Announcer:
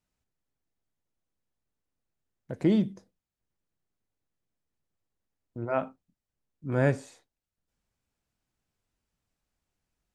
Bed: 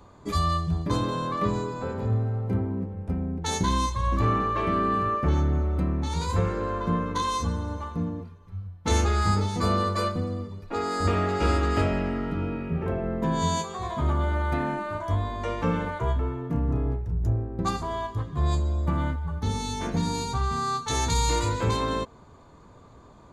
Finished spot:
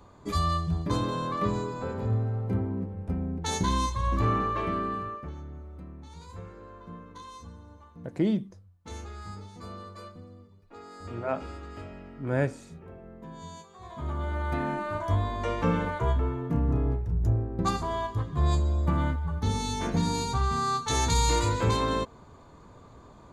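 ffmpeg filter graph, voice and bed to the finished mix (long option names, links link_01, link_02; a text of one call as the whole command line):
ffmpeg -i stem1.wav -i stem2.wav -filter_complex "[0:a]adelay=5550,volume=-2dB[link_01];[1:a]volume=16dB,afade=type=out:start_time=4.44:duration=0.89:silence=0.158489,afade=type=in:start_time=13.72:duration=1.26:silence=0.125893[link_02];[link_01][link_02]amix=inputs=2:normalize=0" out.wav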